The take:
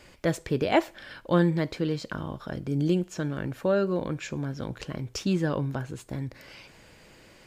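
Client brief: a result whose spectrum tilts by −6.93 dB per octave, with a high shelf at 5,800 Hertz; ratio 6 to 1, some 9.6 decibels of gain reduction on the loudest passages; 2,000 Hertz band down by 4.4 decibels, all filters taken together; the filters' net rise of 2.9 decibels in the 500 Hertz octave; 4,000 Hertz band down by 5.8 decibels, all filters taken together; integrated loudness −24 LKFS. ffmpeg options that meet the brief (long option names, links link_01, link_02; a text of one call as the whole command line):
ffmpeg -i in.wav -af "equalizer=frequency=500:width_type=o:gain=4,equalizer=frequency=2000:width_type=o:gain=-4.5,equalizer=frequency=4000:width_type=o:gain=-8,highshelf=frequency=5800:gain=3.5,acompressor=threshold=-25dB:ratio=6,volume=8dB" out.wav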